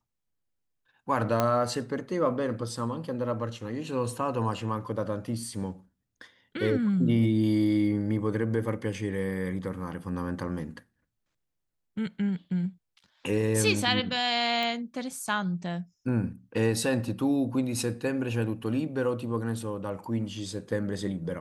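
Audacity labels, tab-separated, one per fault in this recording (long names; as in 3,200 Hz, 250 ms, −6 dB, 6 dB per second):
1.400000	1.400000	click −11 dBFS
14.630000	14.630000	click −19 dBFS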